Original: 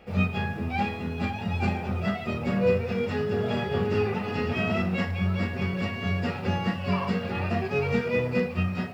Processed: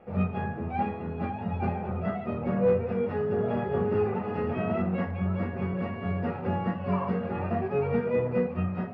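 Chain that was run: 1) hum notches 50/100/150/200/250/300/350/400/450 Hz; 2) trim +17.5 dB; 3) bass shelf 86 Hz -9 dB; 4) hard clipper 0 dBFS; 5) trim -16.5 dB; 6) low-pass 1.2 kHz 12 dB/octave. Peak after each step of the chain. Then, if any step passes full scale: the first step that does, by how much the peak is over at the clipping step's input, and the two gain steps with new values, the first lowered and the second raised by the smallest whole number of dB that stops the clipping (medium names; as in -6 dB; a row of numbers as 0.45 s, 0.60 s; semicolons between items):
-11.5 dBFS, +6.0 dBFS, +5.0 dBFS, 0.0 dBFS, -16.5 dBFS, -16.0 dBFS; step 2, 5.0 dB; step 2 +12.5 dB, step 5 -11.5 dB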